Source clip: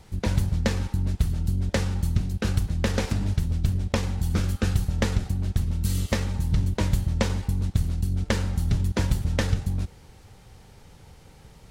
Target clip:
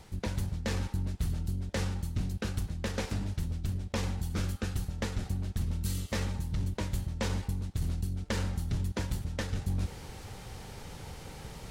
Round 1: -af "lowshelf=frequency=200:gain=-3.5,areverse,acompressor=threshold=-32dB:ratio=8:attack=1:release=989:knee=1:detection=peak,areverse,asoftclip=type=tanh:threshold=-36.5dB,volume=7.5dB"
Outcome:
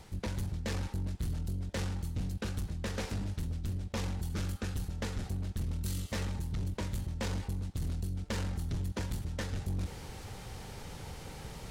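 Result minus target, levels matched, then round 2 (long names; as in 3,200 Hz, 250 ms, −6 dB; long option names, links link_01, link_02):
soft clipping: distortion +14 dB
-af "lowshelf=frequency=200:gain=-3.5,areverse,acompressor=threshold=-32dB:ratio=8:attack=1:release=989:knee=1:detection=peak,areverse,asoftclip=type=tanh:threshold=-26.5dB,volume=7.5dB"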